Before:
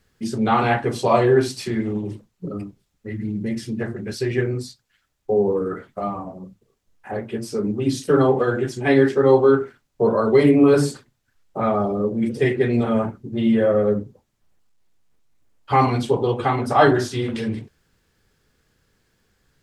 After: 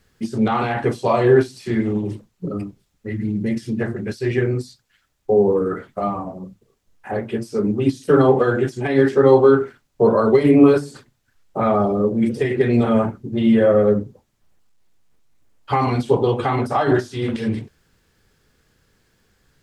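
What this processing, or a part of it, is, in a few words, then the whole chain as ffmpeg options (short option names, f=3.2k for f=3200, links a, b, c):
de-esser from a sidechain: -filter_complex "[0:a]asplit=2[a][b];[b]highpass=5.2k,apad=whole_len=865680[c];[a][c]sidechaincompress=threshold=-46dB:ratio=16:attack=4.9:release=59,volume=3.5dB"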